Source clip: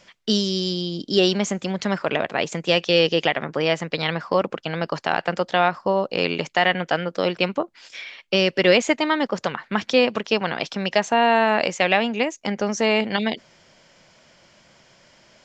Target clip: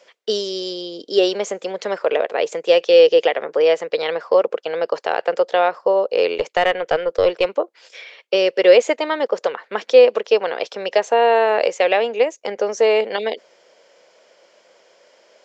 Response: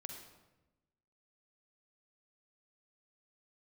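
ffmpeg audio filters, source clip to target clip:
-filter_complex "[0:a]highpass=frequency=470:width_type=q:width=4.3,asettb=1/sr,asplit=3[link_01][link_02][link_03];[link_01]atrim=end=6.374[link_04];[link_02]atrim=start=6.37:end=7.45,asetpts=PTS-STARTPTS,afade=type=in:duration=0.004:curve=qsin,afade=type=out:start_time=1.076:duration=0.004:curve=qsin,aeval=exprs='0.75*(cos(1*acos(clip(val(0)/0.75,-1,1)))-cos(1*PI/2))+0.0335*(cos(4*acos(clip(val(0)/0.75,-1,1)))-cos(4*PI/2))':channel_layout=same[link_05];[link_03]atrim=start=7.446[link_06];[link_04][link_05]acrossfade=duration=0.004:curve1=hsin:curve2=qsin[link_07];[link_07][link_06]acrossfade=duration=0.004:curve1=qsin:curve2=hsin,volume=-2.5dB"

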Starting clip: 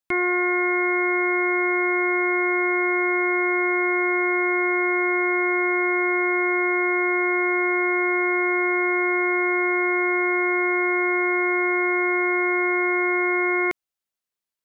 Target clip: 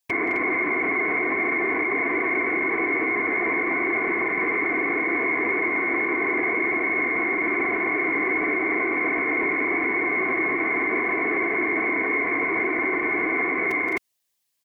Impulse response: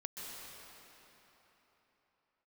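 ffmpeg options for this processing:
-af "highshelf=frequency=2100:gain=8.5,afftfilt=real='hypot(re,im)*cos(2*PI*random(0))':imag='hypot(re,im)*sin(2*PI*random(1))':win_size=512:overlap=0.75,aecho=1:1:172|209.9|259.5:0.316|0.501|0.794,alimiter=limit=-23.5dB:level=0:latency=1:release=70,acontrast=59,bandreject=frequency=1400:width=5.6,volume=2dB"

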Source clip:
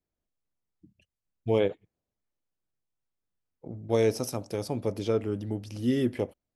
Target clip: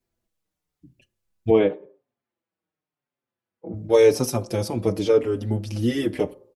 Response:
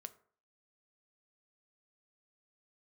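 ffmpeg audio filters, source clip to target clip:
-filter_complex "[0:a]asettb=1/sr,asplit=3[link_01][link_02][link_03];[link_01]atrim=end=1.504[link_04];[link_02]atrim=start=1.5:end=3.74,asetpts=PTS-STARTPTS,afade=type=in:duration=0.004:curve=qsin,afade=type=out:start_time=2.236:duration=0.004:curve=qsin,highpass=170,lowpass=2500[link_05];[link_03]atrim=start=3.736[link_06];[link_04][link_05]acrossfade=duration=0.004:curve1=hsin:curve2=qsin[link_07];[link_07][link_06]acrossfade=duration=0.004:curve1=qsin:curve2=hsin,asplit=2[link_08][link_09];[1:a]atrim=start_sample=2205,afade=type=out:start_time=0.3:duration=0.01,atrim=end_sample=13671,asetrate=36603,aresample=44100[link_10];[link_09][link_10]afir=irnorm=-1:irlink=0,volume=3dB[link_11];[link_08][link_11]amix=inputs=2:normalize=0,asplit=2[link_12][link_13];[link_13]adelay=5.4,afreqshift=-0.9[link_14];[link_12][link_14]amix=inputs=2:normalize=1,volume=5.5dB"

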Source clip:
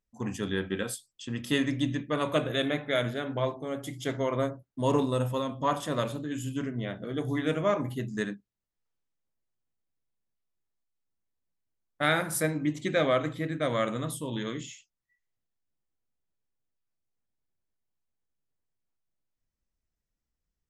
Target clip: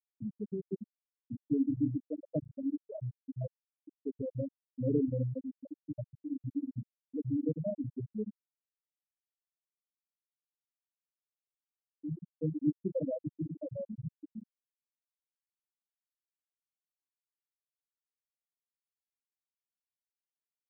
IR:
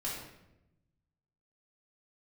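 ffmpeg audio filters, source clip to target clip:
-filter_complex "[0:a]acrossover=split=480[link_01][link_02];[link_02]acompressor=threshold=-40dB:ratio=6[link_03];[link_01][link_03]amix=inputs=2:normalize=0,afftfilt=real='re*gte(hypot(re,im),0.224)':imag='im*gte(hypot(re,im),0.224)':win_size=1024:overlap=0.75"

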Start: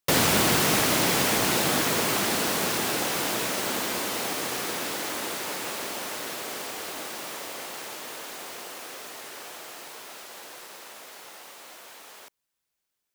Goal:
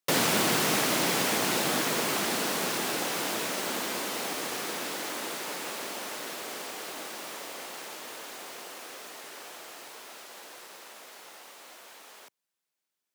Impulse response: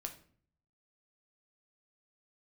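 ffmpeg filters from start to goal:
-filter_complex "[0:a]highshelf=frequency=12000:gain=-3,acrossover=split=120[link_01][link_02];[link_01]acrusher=bits=4:mix=0:aa=0.000001[link_03];[link_03][link_02]amix=inputs=2:normalize=0,volume=-3dB"

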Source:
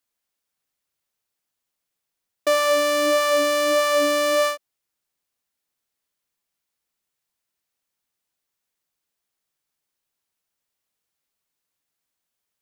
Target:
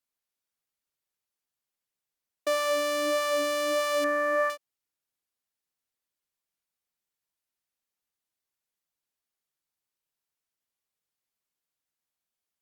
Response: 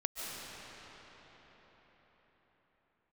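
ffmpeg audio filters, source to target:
-filter_complex "[0:a]asettb=1/sr,asplit=3[link_01][link_02][link_03];[link_01]atrim=end=4.044[link_04];[link_02]atrim=start=4.04:end=4.5,asetpts=PTS-STARTPTS,afade=type=in:duration=0.004:curve=qsin,afade=type=out:start_time=0.456:duration=0.004:curve=qsin,highshelf=frequency=2400:width_type=q:width=3:gain=-12[link_05];[link_03]atrim=start=4.496[link_06];[link_04][link_05]acrossfade=duration=0.004:curve1=hsin:curve2=qsin[link_07];[link_07][link_06]acrossfade=duration=0.004:curve1=qsin:curve2=hsin,volume=-7.5dB" -ar 48000 -c:a libopus -b:a 64k

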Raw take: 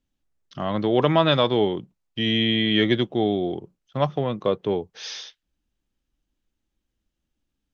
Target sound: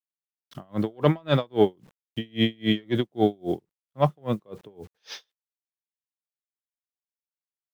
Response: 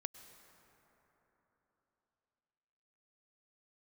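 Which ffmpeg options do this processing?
-filter_complex "[0:a]highshelf=frequency=2400:gain=-9,asplit=2[link_01][link_02];[link_02]acontrast=82,volume=-0.5dB[link_03];[link_01][link_03]amix=inputs=2:normalize=0,acrusher=bits=7:mix=0:aa=0.000001,aeval=exprs='val(0)*pow(10,-37*(0.5-0.5*cos(2*PI*3.7*n/s))/20)':channel_layout=same,volume=-5dB"

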